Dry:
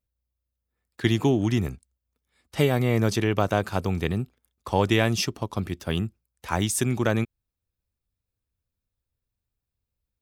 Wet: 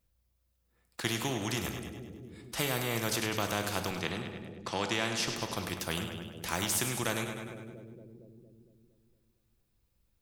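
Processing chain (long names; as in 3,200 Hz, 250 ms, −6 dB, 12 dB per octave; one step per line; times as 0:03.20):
0:03.91–0:05.28: band-pass filter 160–5,800 Hz
echo with a time of its own for lows and highs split 460 Hz, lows 230 ms, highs 102 ms, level −13.5 dB
convolution reverb RT60 0.45 s, pre-delay 6 ms, DRR 8.5 dB
every bin compressed towards the loudest bin 2 to 1
level −8 dB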